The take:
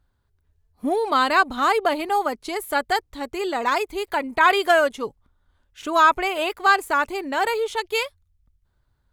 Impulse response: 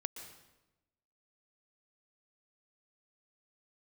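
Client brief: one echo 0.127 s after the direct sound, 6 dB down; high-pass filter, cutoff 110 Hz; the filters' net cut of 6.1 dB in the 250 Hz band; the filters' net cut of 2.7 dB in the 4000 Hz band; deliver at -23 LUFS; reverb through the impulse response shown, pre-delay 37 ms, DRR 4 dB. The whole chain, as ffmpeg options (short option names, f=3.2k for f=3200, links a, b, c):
-filter_complex "[0:a]highpass=110,equalizer=f=250:t=o:g=-8.5,equalizer=f=4k:t=o:g=-3.5,aecho=1:1:127:0.501,asplit=2[a][b];[1:a]atrim=start_sample=2205,adelay=37[c];[b][c]afir=irnorm=-1:irlink=0,volume=-3dB[d];[a][d]amix=inputs=2:normalize=0,volume=-3dB"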